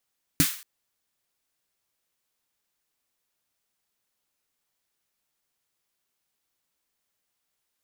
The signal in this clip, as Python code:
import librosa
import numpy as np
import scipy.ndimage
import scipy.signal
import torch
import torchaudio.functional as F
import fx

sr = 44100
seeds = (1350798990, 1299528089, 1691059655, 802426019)

y = fx.drum_snare(sr, seeds[0], length_s=0.23, hz=160.0, second_hz=280.0, noise_db=-3.0, noise_from_hz=1300.0, decay_s=0.1, noise_decay_s=0.45)